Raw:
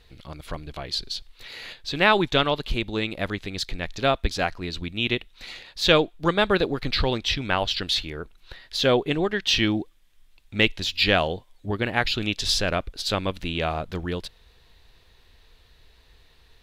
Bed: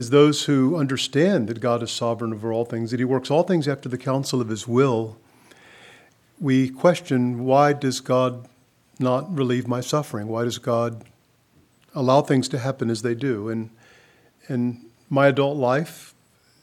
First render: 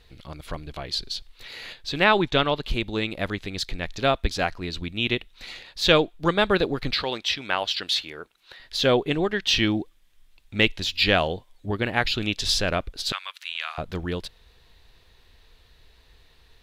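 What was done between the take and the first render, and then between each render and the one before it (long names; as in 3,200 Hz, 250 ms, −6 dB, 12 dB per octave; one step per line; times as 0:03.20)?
0:02.04–0:02.65: high-shelf EQ 8,400 Hz −10.5 dB
0:06.93–0:08.60: high-pass filter 560 Hz 6 dB per octave
0:13.12–0:13.78: high-pass filter 1,200 Hz 24 dB per octave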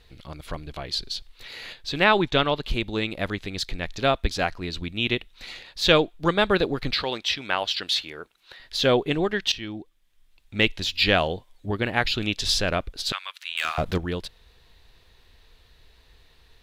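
0:09.52–0:10.77: fade in, from −16.5 dB
0:13.57–0:13.98: leveller curve on the samples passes 2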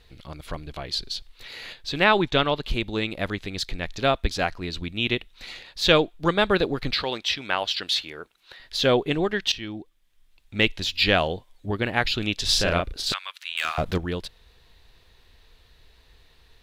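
0:12.45–0:13.14: double-tracking delay 35 ms −2.5 dB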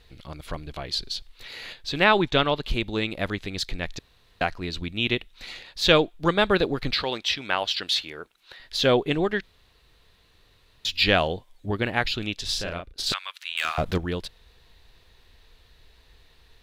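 0:03.99–0:04.41: fill with room tone
0:09.43–0:10.85: fill with room tone
0:11.80–0:12.98: fade out, to −16.5 dB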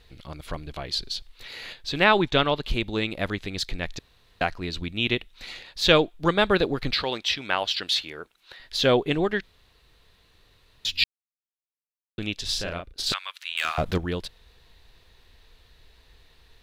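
0:11.04–0:12.18: silence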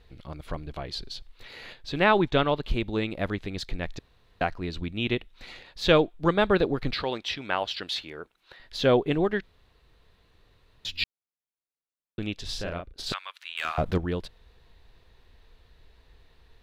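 high-shelf EQ 2,200 Hz −9.5 dB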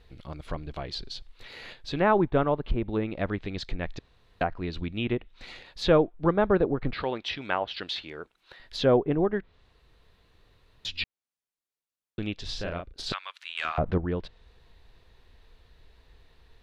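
treble cut that deepens with the level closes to 1,300 Hz, closed at −22.5 dBFS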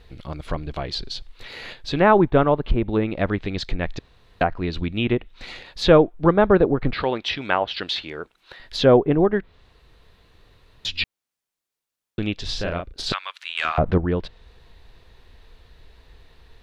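level +7 dB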